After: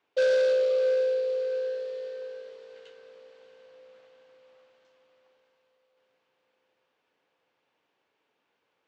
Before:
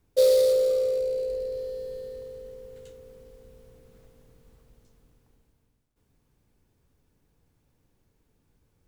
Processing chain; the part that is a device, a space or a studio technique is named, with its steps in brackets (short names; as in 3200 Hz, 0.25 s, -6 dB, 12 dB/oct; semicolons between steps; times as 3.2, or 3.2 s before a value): megaphone (BPF 580–3100 Hz; bell 2900 Hz +5 dB 0.57 oct; hard clip -23 dBFS, distortion -14 dB); LPF 7700 Hz 24 dB/oct; low shelf 330 Hz -4 dB; diffused feedback echo 0.636 s, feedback 53%, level -11 dB; gain +4 dB